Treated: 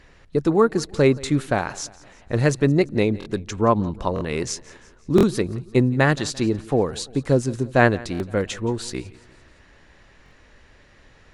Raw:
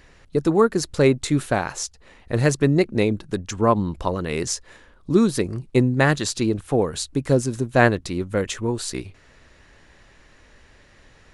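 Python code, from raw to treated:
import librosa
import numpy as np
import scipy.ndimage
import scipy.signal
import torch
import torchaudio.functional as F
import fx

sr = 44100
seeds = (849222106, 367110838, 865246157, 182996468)

y = fx.high_shelf(x, sr, hz=9500.0, db=-11.5)
y = fx.echo_feedback(y, sr, ms=172, feedback_pct=53, wet_db=-21.5)
y = fx.buffer_glitch(y, sr, at_s=(3.19, 4.14, 5.16, 8.13, 10.24), block=1024, repeats=2)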